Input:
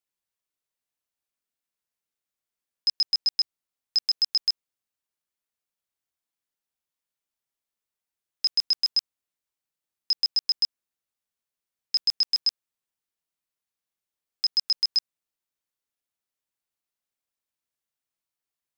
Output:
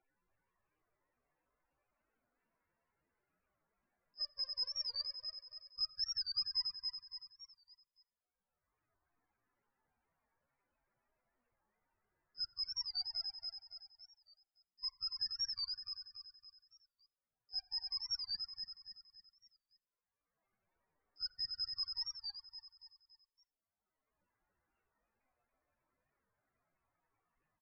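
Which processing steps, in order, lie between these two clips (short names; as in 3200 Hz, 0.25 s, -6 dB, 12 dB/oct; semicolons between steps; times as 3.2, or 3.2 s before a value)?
per-bin expansion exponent 2; LPF 2000 Hz 12 dB/oct; low shelf 62 Hz +4 dB; in parallel at +0.5 dB: level quantiser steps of 11 dB; on the sum: limiter -28.5 dBFS, peak gain reduction 4.5 dB; upward compressor, threshold -48 dBFS; flange 0.48 Hz, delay 0.5 ms, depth 1.5 ms, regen +82%; tempo 0.68×; loudest bins only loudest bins 32; feedback echo 0.282 s, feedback 43%, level -4.5 dB; on a send at -11.5 dB: reverb RT60 0.75 s, pre-delay 41 ms; on the sum: record warp 45 rpm, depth 160 cents; gain +5.5 dB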